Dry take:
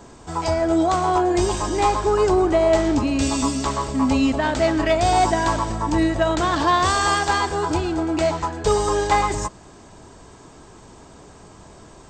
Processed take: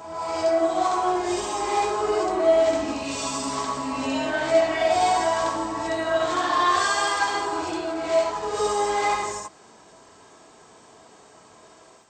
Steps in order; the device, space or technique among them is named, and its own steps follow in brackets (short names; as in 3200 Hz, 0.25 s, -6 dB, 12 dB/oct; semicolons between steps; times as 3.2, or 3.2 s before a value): ghost voice (reverse; reverb RT60 1.2 s, pre-delay 50 ms, DRR -6 dB; reverse; HPF 710 Hz 6 dB/oct); gain -8 dB